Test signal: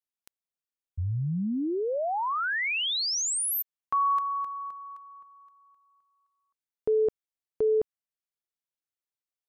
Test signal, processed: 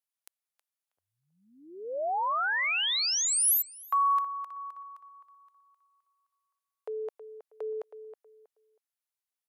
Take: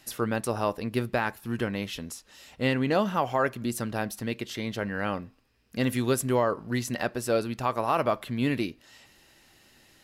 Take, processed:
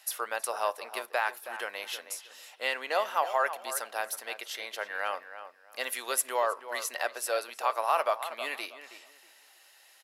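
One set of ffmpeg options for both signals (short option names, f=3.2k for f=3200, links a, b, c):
-filter_complex "[0:a]highpass=f=600:w=0.5412,highpass=f=600:w=1.3066,equalizer=f=11k:w=2:g=6,asplit=2[a][b];[b]adelay=320,lowpass=f=2.4k:p=1,volume=-11dB,asplit=2[c][d];[d]adelay=320,lowpass=f=2.4k:p=1,volume=0.25,asplit=2[e][f];[f]adelay=320,lowpass=f=2.4k:p=1,volume=0.25[g];[a][c][e][g]amix=inputs=4:normalize=0"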